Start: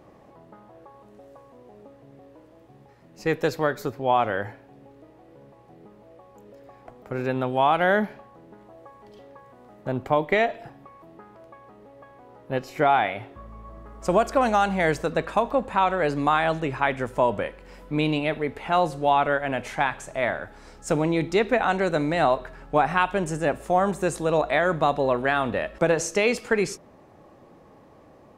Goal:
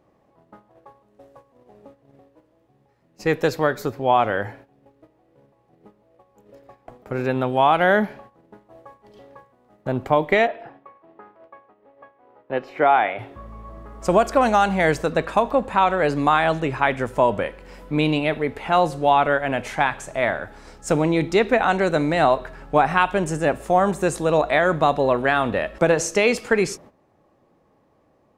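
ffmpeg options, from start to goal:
ffmpeg -i in.wav -filter_complex "[0:a]agate=range=-13dB:threshold=-47dB:ratio=16:detection=peak,asettb=1/sr,asplit=3[link_01][link_02][link_03];[link_01]atrim=end=10.474[link_04];[link_02]atrim=start=10.47:end=13.19,asetpts=PTS-STARTPTS,afade=type=in:duration=0.004:curve=qsin,afade=type=out:start_time=2.716:duration=0.004:curve=qsin,acrossover=split=260 3400:gain=0.251 1 0.0891[link_05][link_06][link_07];[link_05][link_06][link_07]amix=inputs=3:normalize=0[link_08];[link_03]atrim=start=13.186[link_09];[link_04][link_08]acrossfade=duration=0.004:curve1=hsin:curve2=qsin[link_10];[link_10][link_09]acrossfade=duration=0.004:curve1=qsin:curve2=hsin,volume=3.5dB" out.wav

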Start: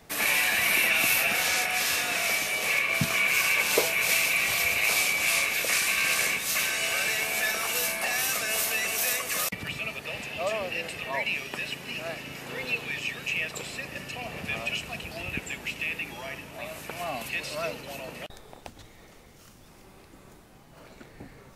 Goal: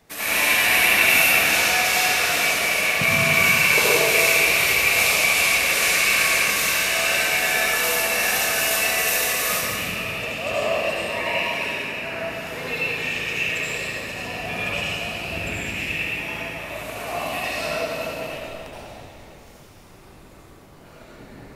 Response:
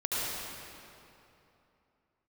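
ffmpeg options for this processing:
-filter_complex "[0:a]asettb=1/sr,asplit=3[link_01][link_02][link_03];[link_01]atrim=end=11.634[link_04];[link_02]atrim=start=11.63:end=12.2,asetpts=PTS-STARTPTS,afade=type=in:duration=0.004:curve=qsin,afade=type=out:start_time=0.566:duration=0.004:curve=qsin,highshelf=frequency=2600:width_type=q:width=1.5:gain=-6.5[link_05];[link_03]atrim=start=12.196[link_06];[link_04][link_05]acrossfade=duration=0.004:curve1=hsin:curve2=qsin[link_07];[link_07][link_06]acrossfade=duration=0.004:curve1=qsin:curve2=hsin,asplit=2[link_08][link_09];[link_09]aeval=exprs='sgn(val(0))*max(abs(val(0))-0.00794,0)':channel_layout=same,volume=-8.5dB[link_10];[link_08][link_10]amix=inputs=2:normalize=0[link_11];[1:a]atrim=start_sample=2205[link_12];[link_11][link_12]afir=irnorm=-1:irlink=0,volume=-3.5dB"

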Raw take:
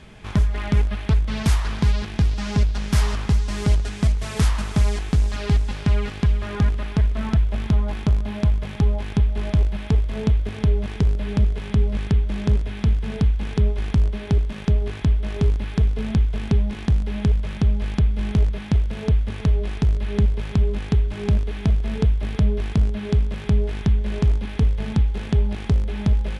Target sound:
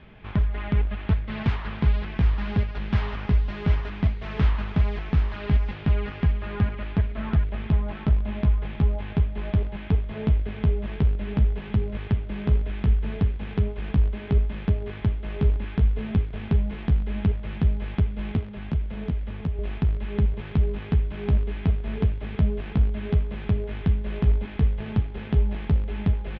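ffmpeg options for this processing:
ffmpeg -i in.wav -filter_complex "[0:a]lowpass=frequency=3200:width=0.5412,lowpass=frequency=3200:width=1.3066,asettb=1/sr,asplit=3[link_01][link_02][link_03];[link_01]atrim=end=18.364[link_04];[link_02]atrim=start=18.36:end=19.59,asetpts=PTS-STARTPTS,afade=type=in:duration=0.004:curve=qsin,afade=type=out:start_time=1.226:duration=0.004:curve=qsin,acrossover=split=250|980[link_05][link_06][link_07];[link_05]acompressor=threshold=-23dB:ratio=4[link_08];[link_06]acompressor=threshold=-37dB:ratio=4[link_09];[link_07]acompressor=threshold=-46dB:ratio=4[link_10];[link_08][link_09][link_10]amix=inputs=3:normalize=0[link_11];[link_03]atrim=start=19.586[link_12];[link_04][link_11]acrossfade=duration=0.004:curve1=hsin:curve2=qsin[link_13];[link_13][link_12]acrossfade=duration=0.004:curve1=qsin:curve2=hsin,aecho=1:1:747:0.501,volume=-4dB" out.wav

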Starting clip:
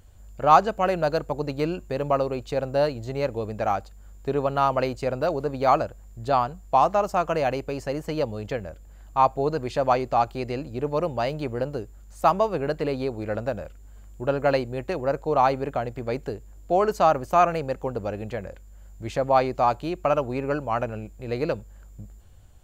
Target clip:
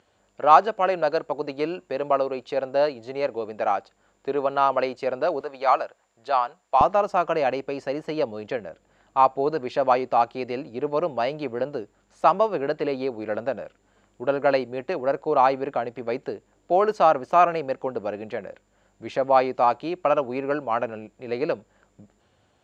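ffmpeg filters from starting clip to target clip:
ffmpeg -i in.wav -af "asetnsamples=nb_out_samples=441:pad=0,asendcmd='5.41 highpass f 650;6.81 highpass f 240',highpass=320,lowpass=4400,volume=1.5dB" out.wav

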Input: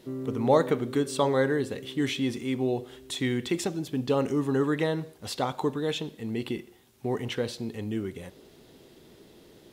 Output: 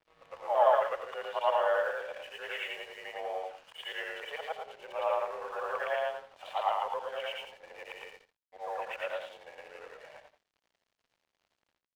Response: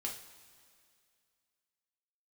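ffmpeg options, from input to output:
-filter_complex "[0:a]afftfilt=real='re':imag='-im':win_size=8192:overlap=0.75,adynamicequalizer=threshold=0.00251:dfrequency=910:dqfactor=5:tfrequency=910:tqfactor=5:attack=5:release=100:ratio=0.375:range=3:mode=cutabove:tftype=bell,acrossover=split=1200[link_01][link_02];[link_01]dynaudnorm=framelen=270:gausssize=3:maxgain=6.5dB[link_03];[link_03][link_02]amix=inputs=2:normalize=0,asetrate=35897,aresample=44100,asplit=2[link_04][link_05];[link_05]aeval=exprs='clip(val(0),-1,0.0355)':channel_layout=same,volume=-8.5dB[link_06];[link_04][link_06]amix=inputs=2:normalize=0,highpass=frequency=510:width_type=q:width=0.5412,highpass=frequency=510:width_type=q:width=1.307,lowpass=frequency=2900:width_type=q:width=0.5176,lowpass=frequency=2900:width_type=q:width=0.7071,lowpass=frequency=2900:width_type=q:width=1.932,afreqshift=160,aeval=exprs='sgn(val(0))*max(abs(val(0))-0.00188,0)':channel_layout=same,aecho=1:1:83:0.282"

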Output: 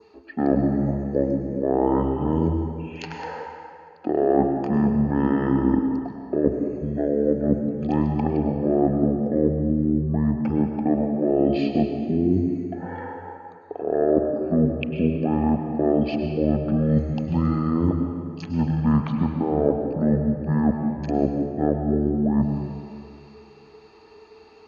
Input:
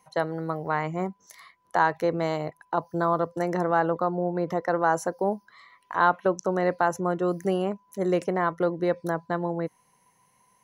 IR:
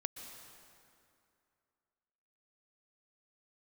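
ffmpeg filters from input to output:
-filter_complex "[0:a]acrossover=split=270|4400[link_01][link_02][link_03];[link_02]crystalizer=i=8.5:c=0[link_04];[link_01][link_04][link_03]amix=inputs=3:normalize=0,equalizer=frequency=750:width=0.54:gain=7.5,areverse,acompressor=threshold=-23dB:ratio=6,areverse,asetrate=19007,aresample=44100,adynamicequalizer=threshold=0.00316:dfrequency=2600:dqfactor=1:tfrequency=2600:tqfactor=1:attack=5:release=100:ratio=0.375:range=2.5:mode=cutabove:tftype=bell[link_05];[1:a]atrim=start_sample=2205,asetrate=52920,aresample=44100[link_06];[link_05][link_06]afir=irnorm=-1:irlink=0,volume=8.5dB"

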